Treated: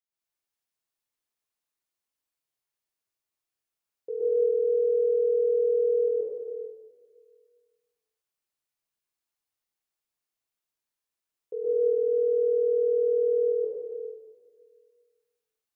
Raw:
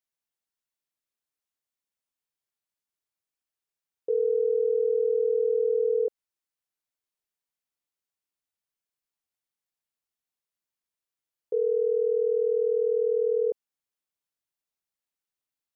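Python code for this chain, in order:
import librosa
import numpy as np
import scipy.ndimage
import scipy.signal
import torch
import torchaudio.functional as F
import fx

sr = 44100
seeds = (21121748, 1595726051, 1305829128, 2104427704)

y = fx.rev_plate(x, sr, seeds[0], rt60_s=1.7, hf_ratio=0.9, predelay_ms=110, drr_db=-9.0)
y = F.gain(torch.from_numpy(y), -7.5).numpy()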